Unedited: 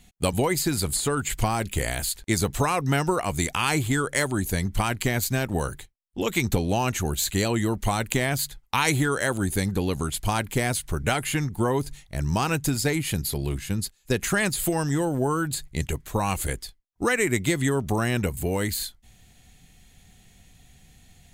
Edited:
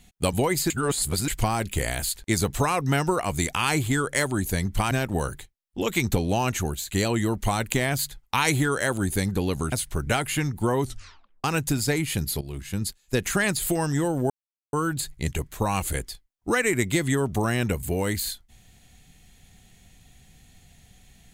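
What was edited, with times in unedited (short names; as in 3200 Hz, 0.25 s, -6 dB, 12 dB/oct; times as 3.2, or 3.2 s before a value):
0.7–1.28 reverse
4.91–5.31 cut
7.03–7.31 fade out, to -15 dB
10.12–10.69 cut
11.78 tape stop 0.63 s
13.38–13.82 fade in, from -12.5 dB
15.27 insert silence 0.43 s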